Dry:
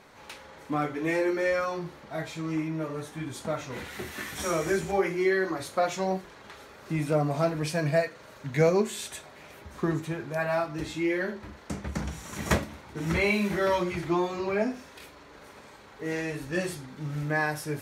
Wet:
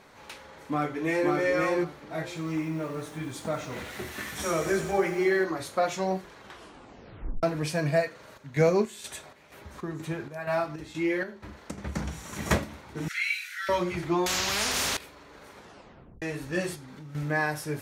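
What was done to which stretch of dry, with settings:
0.61–1.31 s: echo throw 530 ms, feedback 15%, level -2 dB
2.27–5.44 s: bit-crushed delay 92 ms, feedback 80%, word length 8-bit, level -13 dB
6.42 s: tape stop 1.01 s
8.09–11.78 s: square tremolo 2.1 Hz, depth 60%, duty 60%
13.08–13.69 s: Chebyshev high-pass 1.4 kHz, order 6
14.26–14.97 s: spectrum-flattening compressor 10:1
15.55 s: tape stop 0.67 s
16.75–17.15 s: compression, threshold -41 dBFS

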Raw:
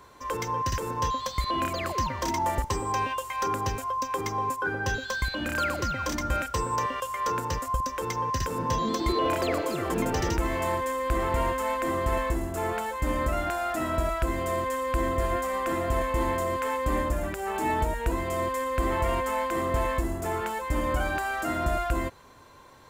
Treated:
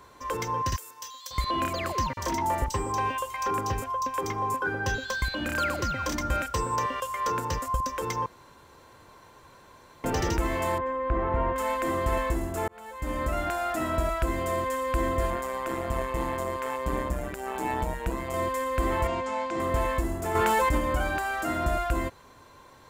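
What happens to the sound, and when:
0.76–1.31 s: differentiator
2.13–4.61 s: bands offset in time highs, lows 40 ms, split 3.7 kHz
8.26–10.04 s: room tone
10.78–11.56 s: low-pass 1.6 kHz
12.68–13.64 s: fade in equal-power
15.30–18.34 s: AM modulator 130 Hz, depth 50%
19.07–19.60 s: cabinet simulation 100–6600 Hz, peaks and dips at 450 Hz -5 dB, 1.2 kHz -6 dB, 1.8 kHz -6 dB, 3 kHz -3 dB
20.35–20.78 s: level flattener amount 100%

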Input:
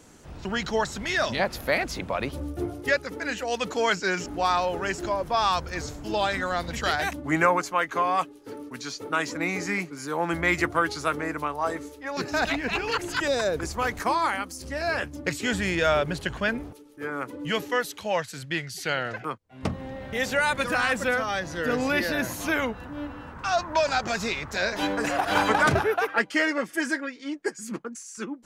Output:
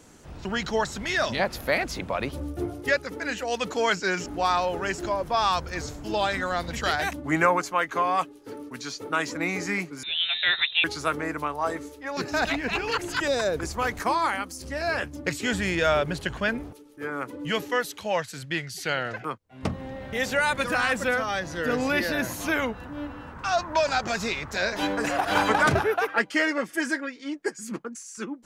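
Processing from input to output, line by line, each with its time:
10.03–10.84 s: frequency inversion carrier 3.9 kHz

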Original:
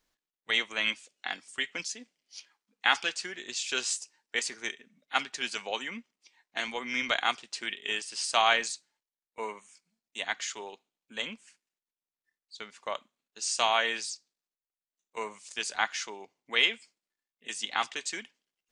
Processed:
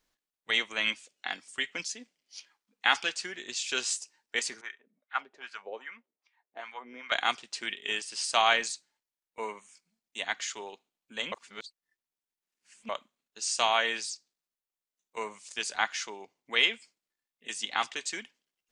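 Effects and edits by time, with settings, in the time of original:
4.61–7.12 s: wah-wah 2.5 Hz 390–1600 Hz, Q 2.2
11.32–12.89 s: reverse

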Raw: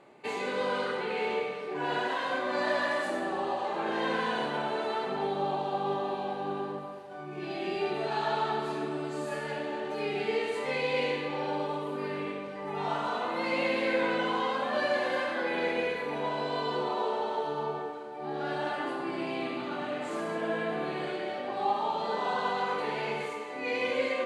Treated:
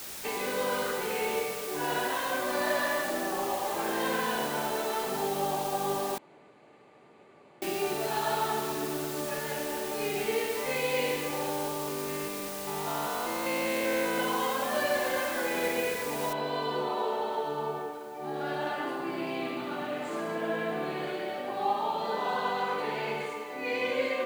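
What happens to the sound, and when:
6.18–7.62 s: room tone
11.49–14.18 s: spectrogram pixelated in time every 200 ms
16.33 s: noise floor step -41 dB -61 dB

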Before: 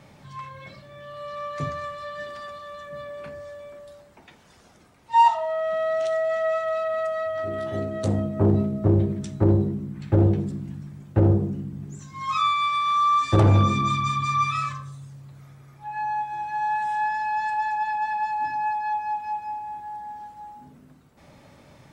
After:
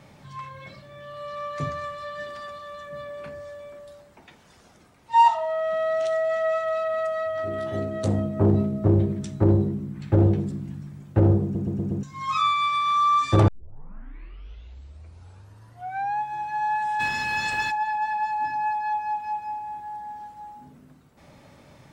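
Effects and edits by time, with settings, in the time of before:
11.43 s: stutter in place 0.12 s, 5 plays
13.48 s: tape start 2.72 s
16.99–17.70 s: spectral peaks clipped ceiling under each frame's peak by 23 dB

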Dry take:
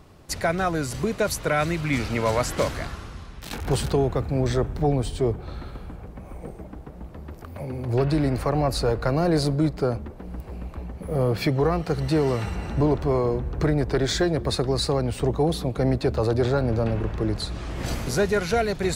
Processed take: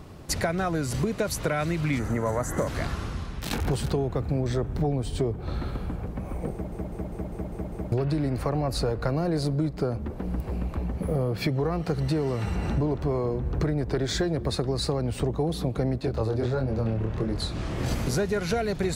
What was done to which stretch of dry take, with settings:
1.99–2.68 s: time-frequency box 2.1–5.8 kHz -14 dB
6.52 s: stutter in place 0.20 s, 7 plays
16.00–17.92 s: chorus 1.5 Hz
whole clip: peaking EQ 160 Hz +4 dB 2.9 oct; compression, threshold -27 dBFS; trim +3.5 dB

